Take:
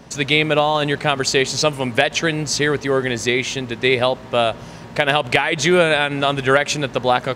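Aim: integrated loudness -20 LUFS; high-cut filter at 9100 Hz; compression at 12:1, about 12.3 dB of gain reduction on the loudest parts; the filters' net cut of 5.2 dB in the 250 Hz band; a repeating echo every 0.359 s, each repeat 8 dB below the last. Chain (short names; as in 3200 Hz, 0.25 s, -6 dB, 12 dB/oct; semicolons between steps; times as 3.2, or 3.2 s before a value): LPF 9100 Hz; bell 250 Hz -8 dB; compressor 12:1, threshold -24 dBFS; feedback echo 0.359 s, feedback 40%, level -8 dB; gain +7.5 dB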